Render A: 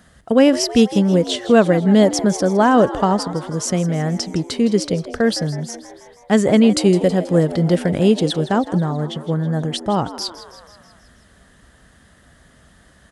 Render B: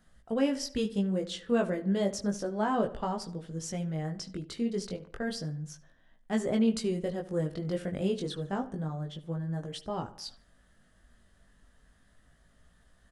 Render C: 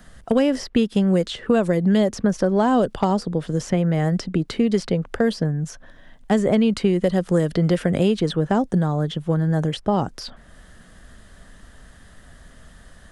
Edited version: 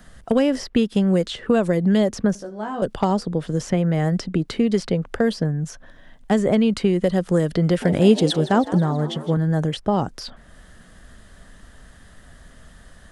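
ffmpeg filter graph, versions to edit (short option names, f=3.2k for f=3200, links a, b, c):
-filter_complex "[2:a]asplit=3[a][b][c];[a]atrim=end=2.352[d];[1:a]atrim=start=2.348:end=2.822[e];[b]atrim=start=2.818:end=7.822[f];[0:a]atrim=start=7.818:end=9.372[g];[c]atrim=start=9.368[h];[d][e]acrossfade=d=0.004:c1=hsin:c2=hsin[i];[i][f]acrossfade=d=0.004:c1=hsin:c2=hsin[j];[j][g]acrossfade=d=0.004:c1=hsin:c2=hsin[k];[k][h]acrossfade=d=0.004:c1=hsin:c2=hsin"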